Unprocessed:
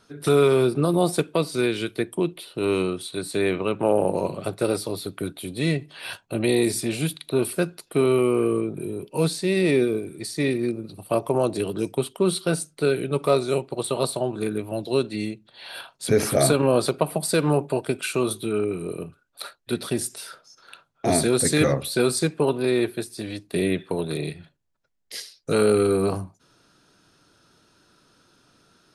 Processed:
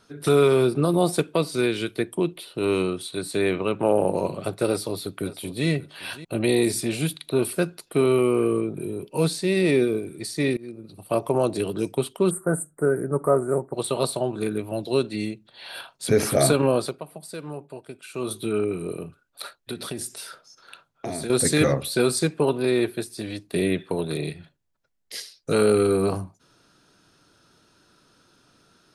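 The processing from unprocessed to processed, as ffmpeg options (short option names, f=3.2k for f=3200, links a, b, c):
-filter_complex "[0:a]asplit=2[a][b];[b]afade=t=in:st=4.68:d=0.01,afade=t=out:st=5.67:d=0.01,aecho=0:1:570|1140:0.149624|0.0149624[c];[a][c]amix=inputs=2:normalize=0,asplit=3[d][e][f];[d]afade=t=out:st=12.29:d=0.02[g];[e]asuperstop=centerf=3800:order=12:qfactor=0.66,afade=t=in:st=12.29:d=0.02,afade=t=out:st=13.73:d=0.02[h];[f]afade=t=in:st=13.73:d=0.02[i];[g][h][i]amix=inputs=3:normalize=0,asettb=1/sr,asplit=3[j][k][l];[j]atrim=end=18.984[m];[k]atrim=start=18.98:end=21.3,asetpts=PTS-STARTPTS,afade=t=in:d=0.004:c=qsin,afade=t=out:st=2.316:d=0.004:c=qsin,acompressor=threshold=-27dB:ratio=6:attack=3.2:release=140:knee=1:detection=peak[n];[l]atrim=start=21.296[o];[m][n]acrossfade=d=0.004:c1=hsin:c2=qsin[p];[p][o]acrossfade=d=0.004:c1=qsin:c2=hsin,asplit=4[q][r][s][t];[q]atrim=end=10.57,asetpts=PTS-STARTPTS,afade=t=out:st=10.566:d=0.004:c=hsin:silence=0.0891251[u];[r]atrim=start=10.57:end=17.02,asetpts=PTS-STARTPTS,afade=t=in:d=0.64:silence=0.0891251,afade=t=out:st=6.08:d=0.37:silence=0.188365[v];[s]atrim=start=17.02:end=18.08,asetpts=PTS-STARTPTS,volume=-14.5dB[w];[t]atrim=start=18.08,asetpts=PTS-STARTPTS,afade=t=in:d=0.37:silence=0.188365[x];[u][v][w][x]concat=n=4:v=0:a=1"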